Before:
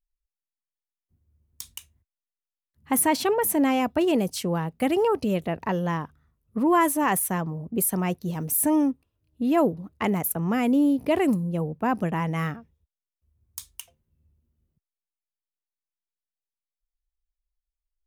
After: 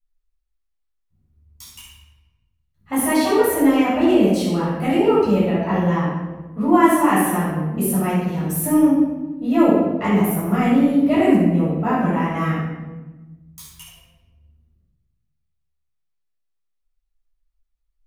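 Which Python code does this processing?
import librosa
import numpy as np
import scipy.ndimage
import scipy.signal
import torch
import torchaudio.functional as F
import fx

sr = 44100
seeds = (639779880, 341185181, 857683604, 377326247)

y = fx.high_shelf(x, sr, hz=7100.0, db=-5.0)
y = fx.notch(y, sr, hz=5100.0, q=22.0)
y = fx.room_shoebox(y, sr, seeds[0], volume_m3=660.0, walls='mixed', distance_m=6.7)
y = y * librosa.db_to_amplitude(-7.5)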